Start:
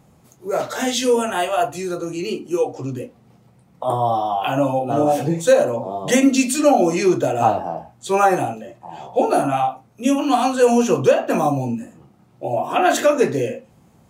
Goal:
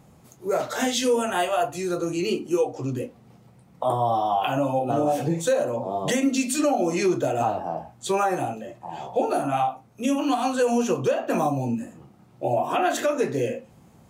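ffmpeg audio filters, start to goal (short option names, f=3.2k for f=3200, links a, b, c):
-af "alimiter=limit=-13.5dB:level=0:latency=1:release=427"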